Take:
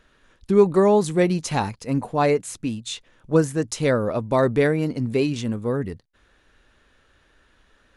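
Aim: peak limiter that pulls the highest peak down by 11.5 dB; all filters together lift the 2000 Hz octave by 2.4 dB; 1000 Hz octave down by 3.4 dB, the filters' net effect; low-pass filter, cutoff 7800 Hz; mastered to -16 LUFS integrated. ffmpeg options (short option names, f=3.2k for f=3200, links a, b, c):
-af "lowpass=7.8k,equalizer=f=1k:t=o:g=-5.5,equalizer=f=2k:t=o:g=4.5,volume=10.5dB,alimiter=limit=-5.5dB:level=0:latency=1"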